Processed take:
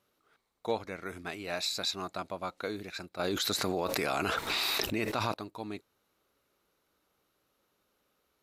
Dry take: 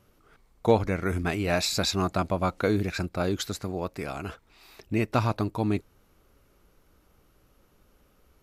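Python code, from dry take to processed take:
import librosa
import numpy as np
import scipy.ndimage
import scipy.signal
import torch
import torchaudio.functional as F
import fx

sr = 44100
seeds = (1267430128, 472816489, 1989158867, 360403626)

y = fx.highpass(x, sr, hz=460.0, slope=6)
y = fx.peak_eq(y, sr, hz=3900.0, db=6.5, octaves=0.27)
y = fx.env_flatten(y, sr, amount_pct=100, at=(3.19, 5.34))
y = F.gain(torch.from_numpy(y), -8.0).numpy()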